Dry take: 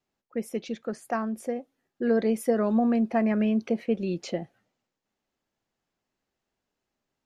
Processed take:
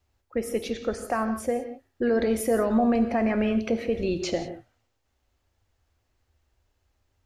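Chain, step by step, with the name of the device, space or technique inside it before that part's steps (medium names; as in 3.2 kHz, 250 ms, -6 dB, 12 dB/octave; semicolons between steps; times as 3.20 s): car stereo with a boomy subwoofer (resonant low shelf 120 Hz +13 dB, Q 3; peak limiter -22 dBFS, peak gain reduction 8 dB); gated-style reverb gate 200 ms flat, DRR 7.5 dB; trim +6 dB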